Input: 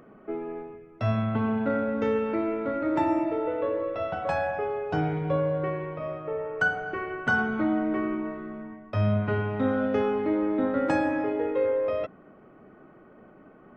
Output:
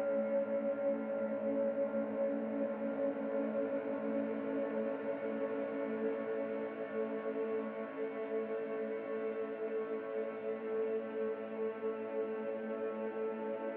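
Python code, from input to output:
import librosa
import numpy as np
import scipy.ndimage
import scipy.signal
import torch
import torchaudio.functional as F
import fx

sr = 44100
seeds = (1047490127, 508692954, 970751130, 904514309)

y = np.clip(10.0 ** (32.0 / 20.0) * x, -1.0, 1.0) / 10.0 ** (32.0 / 20.0)
y = fx.cabinet(y, sr, low_hz=240.0, low_slope=12, high_hz=2100.0, hz=(270.0, 380.0, 560.0, 830.0, 1200.0, 1900.0), db=(7, -9, 9, -3, -10, -4))
y = fx.paulstretch(y, sr, seeds[0], factor=38.0, window_s=0.25, from_s=1.92)
y = F.gain(torch.from_numpy(y), -4.5).numpy()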